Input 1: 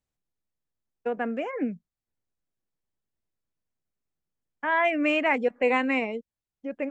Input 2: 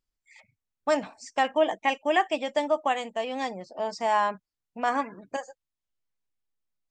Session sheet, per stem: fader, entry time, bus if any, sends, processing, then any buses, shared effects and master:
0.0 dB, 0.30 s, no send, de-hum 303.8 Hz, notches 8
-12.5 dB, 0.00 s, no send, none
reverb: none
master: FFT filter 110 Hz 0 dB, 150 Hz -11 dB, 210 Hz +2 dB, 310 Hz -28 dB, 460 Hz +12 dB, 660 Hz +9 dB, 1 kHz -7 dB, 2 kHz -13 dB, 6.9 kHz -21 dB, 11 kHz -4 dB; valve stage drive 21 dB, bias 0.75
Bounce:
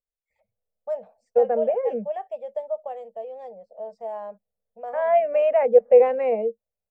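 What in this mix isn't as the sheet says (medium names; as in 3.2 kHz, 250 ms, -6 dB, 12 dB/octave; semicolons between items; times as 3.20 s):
stem 1: missing de-hum 303.8 Hz, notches 8; master: missing valve stage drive 21 dB, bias 0.75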